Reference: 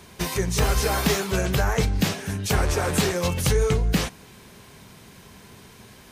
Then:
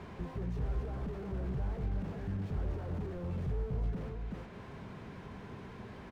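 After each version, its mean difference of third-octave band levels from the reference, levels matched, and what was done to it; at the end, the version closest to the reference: 11.5 dB: LPF 2100 Hz 12 dB/oct; on a send: echo 0.377 s -13 dB; on the sum: compressor 2:1, threshold -43 dBFS, peak gain reduction 14.5 dB; slew limiter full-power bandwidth 2.9 Hz; gain +2 dB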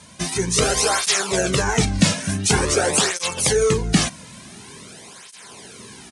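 5.5 dB: high shelf 5700 Hz +11 dB; AGC gain up to 6 dB; downsampling 22050 Hz; tape flanging out of phase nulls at 0.47 Hz, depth 2.7 ms; gain +2.5 dB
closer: second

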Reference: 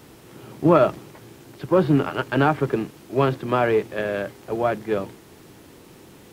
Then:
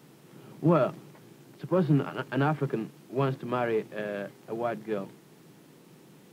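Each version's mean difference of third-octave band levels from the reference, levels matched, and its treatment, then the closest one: 2.0 dB: resonant low shelf 110 Hz -10.5 dB, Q 3; gain -9 dB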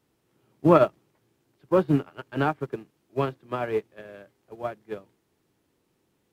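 12.5 dB: upward expander 2.5:1, over -29 dBFS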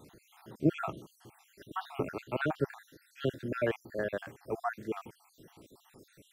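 9.5 dB: random spectral dropouts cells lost 62%; gain -7 dB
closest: first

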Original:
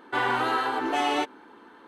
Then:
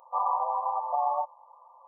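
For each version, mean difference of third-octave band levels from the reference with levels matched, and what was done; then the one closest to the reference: 17.0 dB: FFT band-pass 500–1200 Hz; tilt +4 dB/oct; gain +1.5 dB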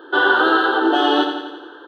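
7.0 dB: EQ curve 110 Hz 0 dB, 180 Hz -27 dB, 320 Hz +15 dB, 1000 Hz +4 dB, 1600 Hz +14 dB, 2200 Hz -20 dB, 3200 Hz +15 dB, 5100 Hz -1 dB, 8500 Hz -15 dB, 14000 Hz +4 dB; feedback echo 86 ms, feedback 59%, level -7 dB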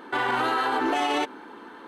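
2.5 dB: bell 100 Hz -12.5 dB 0.26 oct; limiter -23.5 dBFS, peak gain reduction 10 dB; gain +7 dB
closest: third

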